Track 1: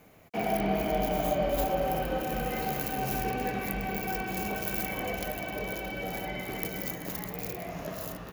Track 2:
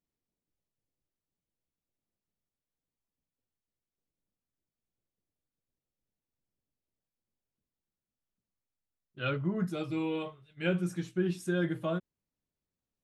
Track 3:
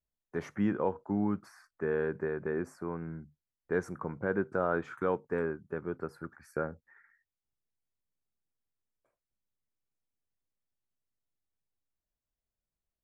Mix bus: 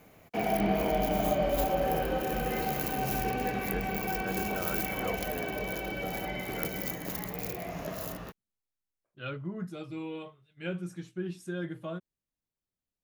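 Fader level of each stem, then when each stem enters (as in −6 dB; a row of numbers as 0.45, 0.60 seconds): 0.0, −5.5, −8.0 decibels; 0.00, 0.00, 0.00 seconds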